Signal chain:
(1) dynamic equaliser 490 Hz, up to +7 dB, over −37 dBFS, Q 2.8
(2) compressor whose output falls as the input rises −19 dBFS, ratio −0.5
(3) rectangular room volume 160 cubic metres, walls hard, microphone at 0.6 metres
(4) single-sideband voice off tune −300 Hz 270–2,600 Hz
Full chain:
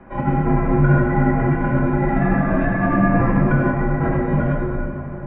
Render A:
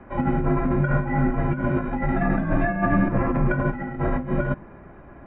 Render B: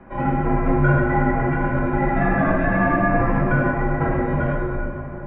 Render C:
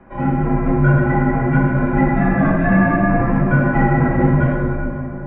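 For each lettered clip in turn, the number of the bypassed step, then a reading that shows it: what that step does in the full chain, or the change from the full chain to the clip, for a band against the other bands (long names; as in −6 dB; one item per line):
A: 3, change in integrated loudness −5.0 LU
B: 1, change in integrated loudness −2.0 LU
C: 2, 2 kHz band +1.5 dB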